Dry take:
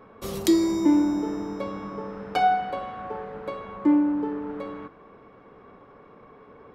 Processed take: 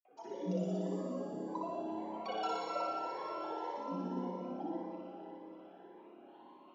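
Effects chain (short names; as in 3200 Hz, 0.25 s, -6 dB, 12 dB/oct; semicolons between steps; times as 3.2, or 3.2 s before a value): elliptic band-pass 190–4000 Hz; spectral gate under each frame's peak -25 dB strong; vowel filter e; low shelf 490 Hz -9.5 dB; notch 2100 Hz, Q 6.4; grains 0.1 s, pitch spread up and down by 12 st; flange 0.48 Hz, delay 3.6 ms, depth 4.3 ms, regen +55%; on a send: flutter echo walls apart 10.2 m, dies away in 1.5 s; on the sum: Schroeder reverb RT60 3.8 s, combs from 25 ms, DRR -1.5 dB; cascading phaser rising 1.8 Hz; gain +7.5 dB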